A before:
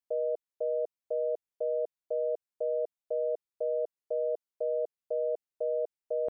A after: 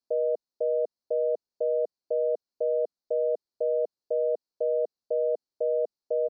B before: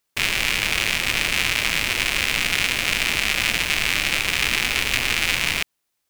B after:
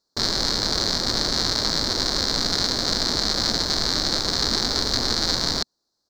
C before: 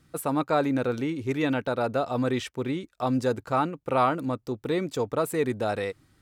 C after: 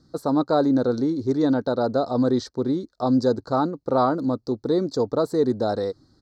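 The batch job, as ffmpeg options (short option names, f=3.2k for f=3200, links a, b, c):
-af "firequalizer=gain_entry='entry(160,0);entry(230,5);entry(1600,-6);entry(2600,-30);entry(4200,9);entry(9600,-17)':delay=0.05:min_phase=1,volume=2dB"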